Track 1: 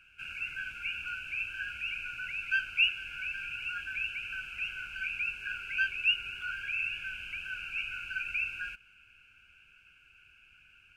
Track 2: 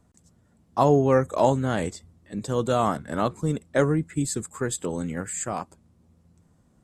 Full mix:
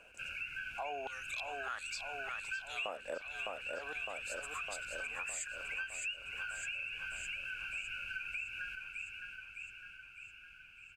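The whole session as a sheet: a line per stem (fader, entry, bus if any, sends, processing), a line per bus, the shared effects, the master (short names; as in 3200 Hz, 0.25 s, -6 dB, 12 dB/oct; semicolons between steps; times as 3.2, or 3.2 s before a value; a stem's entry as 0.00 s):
-0.5 dB, 0.00 s, no send, echo send -10.5 dB, dry
-0.5 dB, 0.00 s, no send, echo send -8 dB, auto swell 0.555 s; stepped high-pass 2.8 Hz 540–4400 Hz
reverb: off
echo: feedback echo 0.609 s, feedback 58%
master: compressor 5:1, threshold -39 dBFS, peak gain reduction 18.5 dB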